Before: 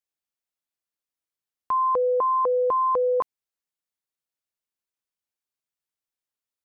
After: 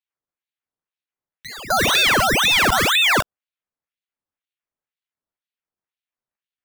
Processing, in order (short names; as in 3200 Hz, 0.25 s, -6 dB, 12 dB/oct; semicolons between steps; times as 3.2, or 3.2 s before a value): LPF 1200 Hz 12 dB/oct; pre-echo 0.256 s -17 dB; decimation with a swept rate 15×, swing 100% 1.6 Hz; ring modulator with a swept carrier 1700 Hz, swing 85%, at 2 Hz; gain +9 dB